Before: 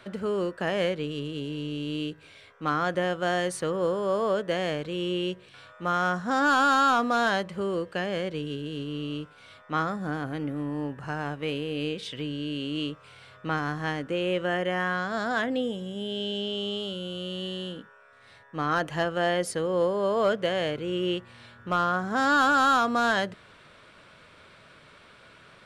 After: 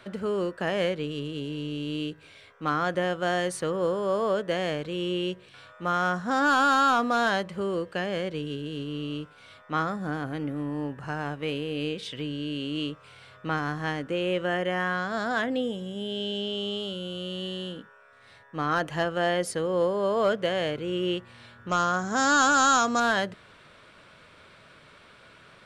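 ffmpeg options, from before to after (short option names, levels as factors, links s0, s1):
-filter_complex "[0:a]asettb=1/sr,asplit=3[s0][s1][s2];[s0]atrim=end=21.694[s3];[s1]atrim=start=21.69:end=23,asetpts=PTS-STARTPTS,afade=t=in:d=0.004:c=qsin,afade=t=out:st=1.306:d=0.004:c=qsin,lowpass=f=6700:t=q:w=7.9[s4];[s2]atrim=start=22.996[s5];[s3][s4]acrossfade=d=0.004:c1=hsin:c2=qsin[s6];[s6][s5]acrossfade=d=0.004:c1=qsin:c2=hsin"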